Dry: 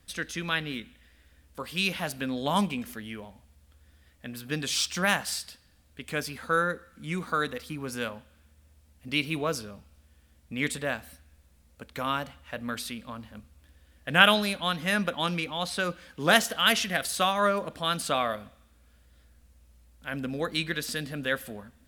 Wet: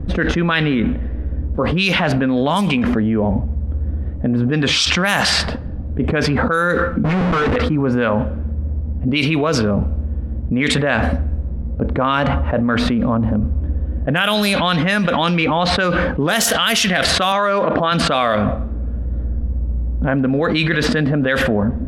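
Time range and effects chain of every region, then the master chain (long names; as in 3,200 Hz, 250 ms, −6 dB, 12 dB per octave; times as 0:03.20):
0:07.04–0:07.56: mains-hum notches 60/120/180/240/300 Hz + comb filter 4.6 ms, depth 90% + comparator with hysteresis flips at −37 dBFS
0:17.32–0:17.92: high-pass filter 310 Hz 6 dB per octave + high-frequency loss of the air 100 metres
whole clip: low-pass that shuts in the quiet parts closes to 350 Hz, open at −20.5 dBFS; envelope flattener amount 100%; level −2 dB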